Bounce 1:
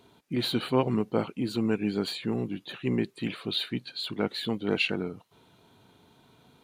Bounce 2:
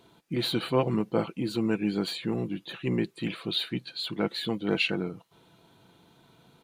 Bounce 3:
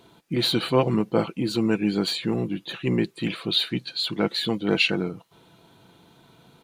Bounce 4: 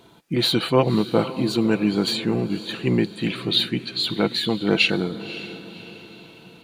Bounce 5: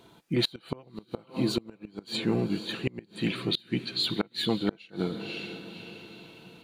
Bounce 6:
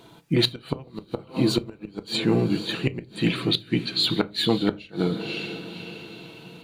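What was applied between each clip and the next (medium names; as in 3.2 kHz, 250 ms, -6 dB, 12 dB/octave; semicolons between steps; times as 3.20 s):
comb 6 ms, depth 35%
dynamic bell 5.7 kHz, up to +5 dB, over -49 dBFS, Q 1.2; trim +4.5 dB
echo that smears into a reverb 548 ms, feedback 44%, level -14 dB; trim +2.5 dB
inverted gate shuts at -10 dBFS, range -29 dB; trim -4 dB
reverberation RT60 0.30 s, pre-delay 6 ms, DRR 11.5 dB; trim +5.5 dB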